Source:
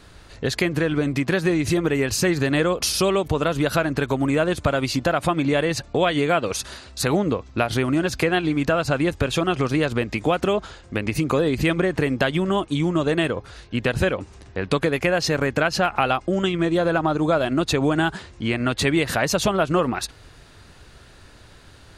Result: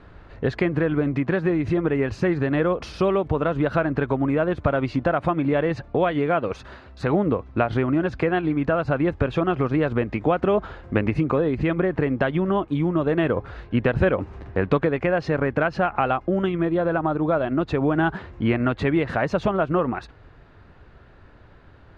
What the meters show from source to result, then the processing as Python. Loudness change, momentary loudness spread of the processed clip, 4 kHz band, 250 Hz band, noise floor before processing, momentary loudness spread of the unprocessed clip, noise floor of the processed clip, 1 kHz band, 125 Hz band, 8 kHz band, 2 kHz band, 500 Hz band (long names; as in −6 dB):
−1.0 dB, 3 LU, −13.0 dB, 0.0 dB, −48 dBFS, 5 LU, −49 dBFS, −1.0 dB, 0.0 dB, below −20 dB, −3.5 dB, 0.0 dB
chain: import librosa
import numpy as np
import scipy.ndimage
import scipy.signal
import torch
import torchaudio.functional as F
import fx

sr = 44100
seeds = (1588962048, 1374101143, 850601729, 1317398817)

y = scipy.signal.sosfilt(scipy.signal.butter(2, 1700.0, 'lowpass', fs=sr, output='sos'), x)
y = fx.rider(y, sr, range_db=10, speed_s=0.5)